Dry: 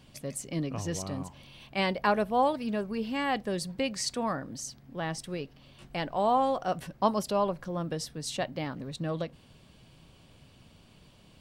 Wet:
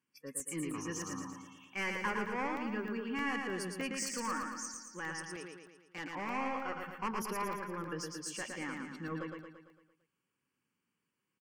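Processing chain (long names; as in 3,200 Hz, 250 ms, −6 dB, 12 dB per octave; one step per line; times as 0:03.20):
high-pass filter 310 Hz 12 dB per octave
noise reduction from a noise print of the clip's start 23 dB
soft clipping −26 dBFS, distortion −9 dB
phaser with its sweep stopped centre 1,600 Hz, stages 4
0:05.25–0:06.04: power curve on the samples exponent 1.4
on a send: repeating echo 113 ms, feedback 54%, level −4 dB
on the sum: regular buffer underruns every 0.31 s, samples 64, zero, from 0:00.40
level +1.5 dB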